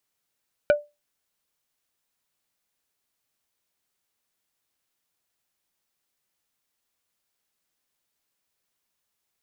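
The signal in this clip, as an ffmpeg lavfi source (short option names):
-f lavfi -i "aevalsrc='0.282*pow(10,-3*t/0.23)*sin(2*PI*589*t)+0.126*pow(10,-3*t/0.077)*sin(2*PI*1472.5*t)+0.0562*pow(10,-3*t/0.044)*sin(2*PI*2356*t)+0.0251*pow(10,-3*t/0.033)*sin(2*PI*2945*t)+0.0112*pow(10,-3*t/0.024)*sin(2*PI*3828.5*t)':d=0.45:s=44100"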